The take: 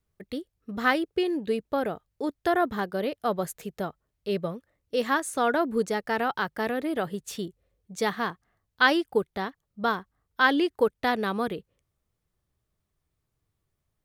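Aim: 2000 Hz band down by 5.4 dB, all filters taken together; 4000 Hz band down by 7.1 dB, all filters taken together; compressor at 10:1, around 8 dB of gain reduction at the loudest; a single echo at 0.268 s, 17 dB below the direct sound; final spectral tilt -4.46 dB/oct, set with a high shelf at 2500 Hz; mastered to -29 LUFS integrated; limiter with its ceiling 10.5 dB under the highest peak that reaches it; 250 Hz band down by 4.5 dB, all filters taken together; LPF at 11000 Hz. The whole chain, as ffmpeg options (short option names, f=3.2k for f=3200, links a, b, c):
-af "lowpass=11k,equalizer=f=250:t=o:g=-6,equalizer=f=2k:t=o:g=-5,highshelf=f=2.5k:g=-5,equalizer=f=4k:t=o:g=-3,acompressor=threshold=-27dB:ratio=10,alimiter=level_in=4.5dB:limit=-24dB:level=0:latency=1,volume=-4.5dB,aecho=1:1:268:0.141,volume=10dB"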